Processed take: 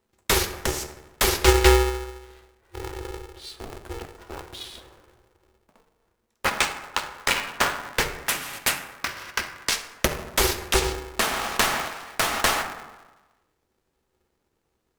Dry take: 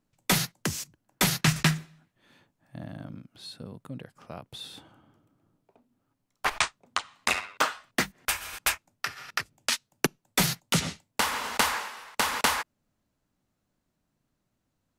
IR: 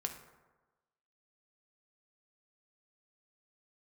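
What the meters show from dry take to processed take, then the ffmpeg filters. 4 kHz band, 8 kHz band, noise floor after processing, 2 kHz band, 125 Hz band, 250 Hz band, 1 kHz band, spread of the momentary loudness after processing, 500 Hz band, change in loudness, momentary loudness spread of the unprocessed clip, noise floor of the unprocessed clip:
+3.5 dB, +3.5 dB, −75 dBFS, +3.5 dB, +1.5 dB, +2.0 dB, +4.0 dB, 18 LU, +11.5 dB, +4.0 dB, 18 LU, −79 dBFS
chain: -filter_complex "[0:a]acrusher=bits=4:mode=log:mix=0:aa=0.000001[link_01];[1:a]atrim=start_sample=2205[link_02];[link_01][link_02]afir=irnorm=-1:irlink=0,aeval=exprs='val(0)*sgn(sin(2*PI*220*n/s))':channel_layout=same,volume=3.5dB"

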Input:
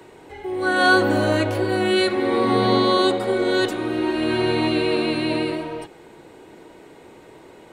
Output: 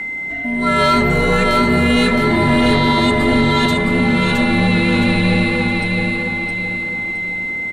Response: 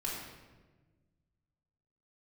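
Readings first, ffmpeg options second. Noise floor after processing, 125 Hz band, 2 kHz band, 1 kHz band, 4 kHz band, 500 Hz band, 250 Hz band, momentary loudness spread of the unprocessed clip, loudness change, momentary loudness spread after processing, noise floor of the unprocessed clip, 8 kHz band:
−24 dBFS, +11.5 dB, +8.0 dB, +5.0 dB, +4.5 dB, +1.0 dB, +7.0 dB, 9 LU, +5.0 dB, 7 LU, −47 dBFS, +5.5 dB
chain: -filter_complex "[0:a]asplit=2[link_01][link_02];[link_02]asoftclip=type=tanh:threshold=-21dB,volume=-6.5dB[link_03];[link_01][link_03]amix=inputs=2:normalize=0,aeval=exprs='val(0)+0.0631*sin(2*PI*2200*n/s)':channel_layout=same,aecho=1:1:666|1332|1998|2664|3330:0.668|0.267|0.107|0.0428|0.0171,apsyclip=9.5dB,afreqshift=-130,volume=-7.5dB"

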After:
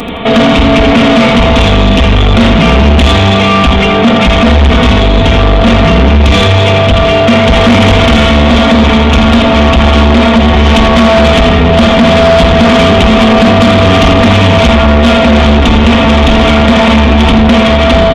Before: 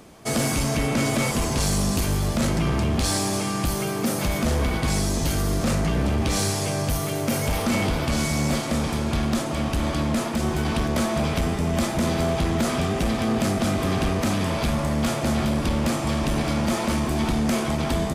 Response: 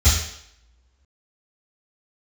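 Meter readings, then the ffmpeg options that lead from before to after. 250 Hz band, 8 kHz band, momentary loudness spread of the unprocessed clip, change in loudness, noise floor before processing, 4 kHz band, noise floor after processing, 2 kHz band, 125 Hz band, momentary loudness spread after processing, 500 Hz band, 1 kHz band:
+17.5 dB, +2.5 dB, 2 LU, +18.0 dB, −27 dBFS, +20.0 dB, −7 dBFS, +20.0 dB, +16.5 dB, 2 LU, +20.0 dB, +19.5 dB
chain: -filter_complex "[0:a]aresample=8000,aresample=44100,asplit=2[link_01][link_02];[1:a]atrim=start_sample=2205,asetrate=52920,aresample=44100[link_03];[link_02][link_03]afir=irnorm=-1:irlink=0,volume=-37dB[link_04];[link_01][link_04]amix=inputs=2:normalize=0,acontrast=21,highshelf=frequency=2400:gain=10,bandreject=frequency=1600:width=11,aecho=1:1:4.3:0.77,aecho=1:1:83|166|249|332:0.501|0.185|0.0686|0.0254,dynaudnorm=framelen=350:gausssize=11:maxgain=8dB,asoftclip=type=tanh:threshold=-15dB,alimiter=level_in=22dB:limit=-1dB:release=50:level=0:latency=1,volume=-1dB"

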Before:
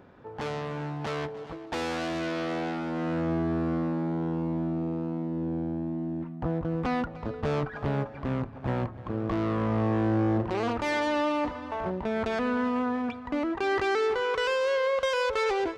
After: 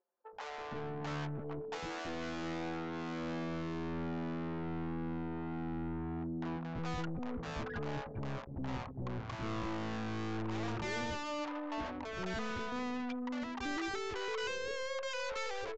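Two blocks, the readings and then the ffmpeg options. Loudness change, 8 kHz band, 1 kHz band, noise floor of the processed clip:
−10.5 dB, can't be measured, −10.0 dB, −45 dBFS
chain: -filter_complex "[0:a]anlmdn=1.58,aeval=exprs='(tanh(79.4*val(0)+0.15)-tanh(0.15))/79.4':channel_layout=same,acrossover=split=540[link_01][link_02];[link_01]adelay=330[link_03];[link_03][link_02]amix=inputs=2:normalize=0,aeval=exprs='0.0266*(abs(mod(val(0)/0.0266+3,4)-2)-1)':channel_layout=same,aresample=16000,aresample=44100,volume=1.5dB"

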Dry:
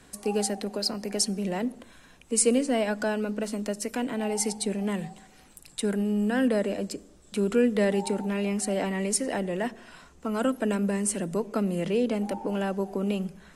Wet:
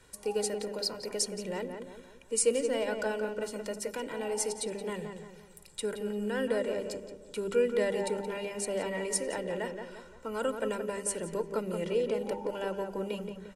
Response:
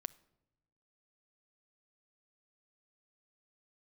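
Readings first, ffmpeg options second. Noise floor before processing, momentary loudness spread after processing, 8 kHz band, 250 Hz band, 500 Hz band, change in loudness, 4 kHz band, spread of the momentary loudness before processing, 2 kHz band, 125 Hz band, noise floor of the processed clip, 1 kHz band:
−55 dBFS, 12 LU, −4.5 dB, −11.5 dB, −2.5 dB, −5.5 dB, −4.0 dB, 8 LU, −4.0 dB, −10.5 dB, −54 dBFS, −5.0 dB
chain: -filter_complex "[0:a]bandreject=frequency=50:width_type=h:width=6,bandreject=frequency=100:width_type=h:width=6,bandreject=frequency=150:width_type=h:width=6,bandreject=frequency=200:width_type=h:width=6,bandreject=frequency=250:width_type=h:width=6,bandreject=frequency=300:width_type=h:width=6,bandreject=frequency=350:width_type=h:width=6,bandreject=frequency=400:width_type=h:width=6,aecho=1:1:2.1:0.56,asplit=2[link_01][link_02];[link_02]adelay=174,lowpass=frequency=2200:poles=1,volume=-6dB,asplit=2[link_03][link_04];[link_04]adelay=174,lowpass=frequency=2200:poles=1,volume=0.44,asplit=2[link_05][link_06];[link_06]adelay=174,lowpass=frequency=2200:poles=1,volume=0.44,asplit=2[link_07][link_08];[link_08]adelay=174,lowpass=frequency=2200:poles=1,volume=0.44,asplit=2[link_09][link_10];[link_10]adelay=174,lowpass=frequency=2200:poles=1,volume=0.44[link_11];[link_01][link_03][link_05][link_07][link_09][link_11]amix=inputs=6:normalize=0,volume=-6dB"

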